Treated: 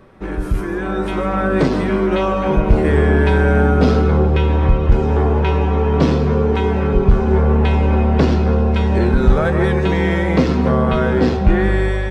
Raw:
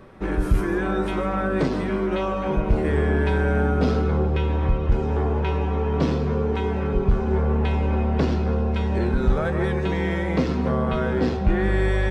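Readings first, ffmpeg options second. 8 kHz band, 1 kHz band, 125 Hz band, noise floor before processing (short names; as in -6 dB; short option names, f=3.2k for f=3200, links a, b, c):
n/a, +7.0 dB, +7.0 dB, -26 dBFS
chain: -af "dynaudnorm=f=770:g=3:m=9dB"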